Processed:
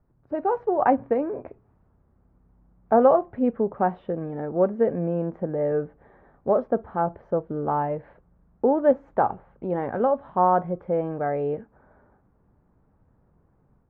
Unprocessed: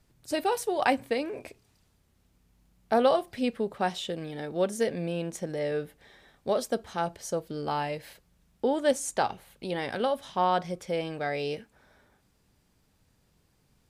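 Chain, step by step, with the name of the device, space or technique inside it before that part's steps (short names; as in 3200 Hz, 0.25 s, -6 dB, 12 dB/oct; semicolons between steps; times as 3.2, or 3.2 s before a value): action camera in a waterproof case (LPF 1300 Hz 24 dB/oct; AGC gain up to 6 dB; AAC 48 kbps 24000 Hz)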